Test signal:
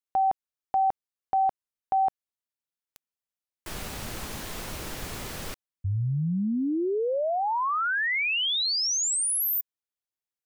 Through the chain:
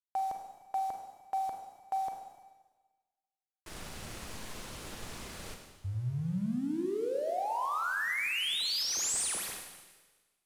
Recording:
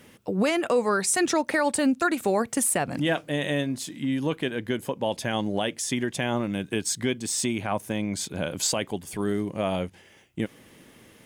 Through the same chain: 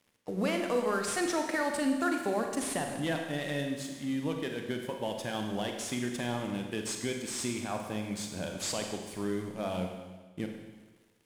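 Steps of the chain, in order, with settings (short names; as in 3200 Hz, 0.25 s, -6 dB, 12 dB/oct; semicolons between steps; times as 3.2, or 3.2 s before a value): CVSD 64 kbps; crossover distortion -48.5 dBFS; Schroeder reverb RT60 1.3 s, combs from 33 ms, DRR 3 dB; gain -7.5 dB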